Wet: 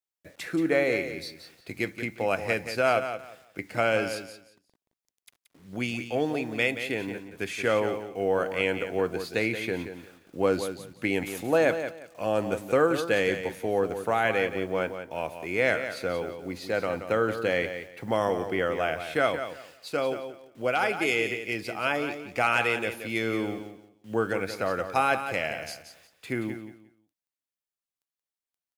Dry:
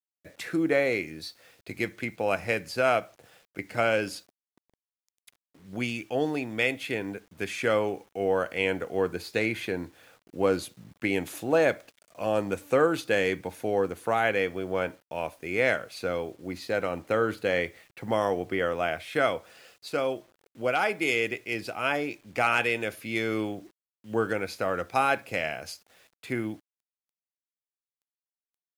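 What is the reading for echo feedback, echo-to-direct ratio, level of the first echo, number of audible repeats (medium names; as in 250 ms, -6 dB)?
22%, -9.5 dB, -9.5 dB, 2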